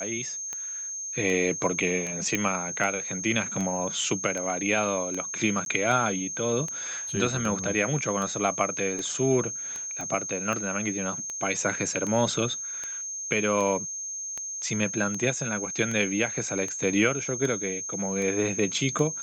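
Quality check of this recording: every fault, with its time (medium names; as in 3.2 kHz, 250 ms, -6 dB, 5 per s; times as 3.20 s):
tick 78 rpm -19 dBFS
whine 6.4 kHz -32 dBFS
2.35 s: pop -11 dBFS
5.65–5.66 s: dropout 12 ms
10.01 s: pop -22 dBFS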